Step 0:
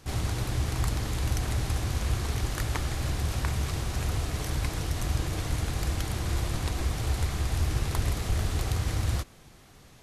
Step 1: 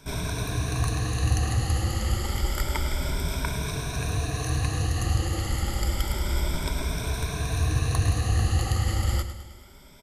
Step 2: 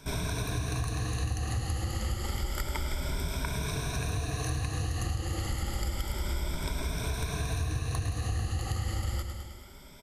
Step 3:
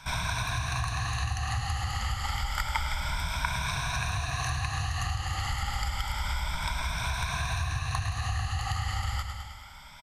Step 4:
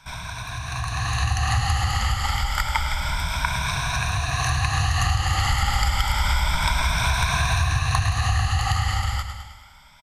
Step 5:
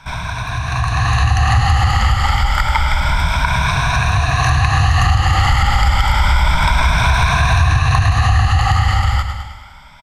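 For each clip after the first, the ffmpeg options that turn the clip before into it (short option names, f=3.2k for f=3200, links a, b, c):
-af "afftfilt=real='re*pow(10,15/40*sin(2*PI*(1.6*log(max(b,1)*sr/1024/100)/log(2)-(0.29)*(pts-256)/sr)))':imag='im*pow(10,15/40*sin(2*PI*(1.6*log(max(b,1)*sr/1024/100)/log(2)-(0.29)*(pts-256)/sr)))':win_size=1024:overlap=0.75,aecho=1:1:105|210|315|420|525|630:0.282|0.149|0.0792|0.042|0.0222|0.0118"
-af "acompressor=threshold=-28dB:ratio=6"
-af "firequalizer=gain_entry='entry(120,0);entry(380,-20);entry(800,9);entry(11000,-4)':delay=0.05:min_phase=1"
-af "dynaudnorm=f=160:g=13:m=14dB,volume=-3dB"
-filter_complex "[0:a]highshelf=f=4.4k:g=-12,asplit=2[a][b];[b]alimiter=limit=-16.5dB:level=0:latency=1,volume=0dB[c];[a][c]amix=inputs=2:normalize=0,asoftclip=type=tanh:threshold=-5.5dB,volume=5dB"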